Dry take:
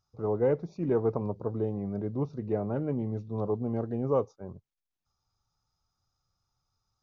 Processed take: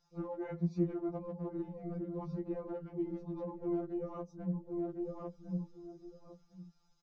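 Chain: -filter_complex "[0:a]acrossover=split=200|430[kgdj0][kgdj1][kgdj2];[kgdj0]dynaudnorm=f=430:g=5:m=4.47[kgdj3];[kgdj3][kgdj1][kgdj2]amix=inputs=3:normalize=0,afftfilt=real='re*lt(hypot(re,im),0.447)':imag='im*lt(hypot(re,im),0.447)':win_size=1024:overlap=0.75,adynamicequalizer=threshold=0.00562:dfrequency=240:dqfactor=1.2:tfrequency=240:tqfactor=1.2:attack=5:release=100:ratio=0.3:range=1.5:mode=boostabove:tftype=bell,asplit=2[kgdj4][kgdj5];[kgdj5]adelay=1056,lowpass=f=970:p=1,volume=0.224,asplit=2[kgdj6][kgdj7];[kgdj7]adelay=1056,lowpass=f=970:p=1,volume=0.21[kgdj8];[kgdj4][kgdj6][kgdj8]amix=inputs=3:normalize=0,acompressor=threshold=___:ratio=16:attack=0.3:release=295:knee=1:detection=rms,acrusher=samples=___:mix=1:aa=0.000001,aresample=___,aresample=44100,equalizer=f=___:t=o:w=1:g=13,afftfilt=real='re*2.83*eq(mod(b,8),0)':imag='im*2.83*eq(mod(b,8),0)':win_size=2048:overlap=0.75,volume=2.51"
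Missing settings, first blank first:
0.0158, 3, 16000, 64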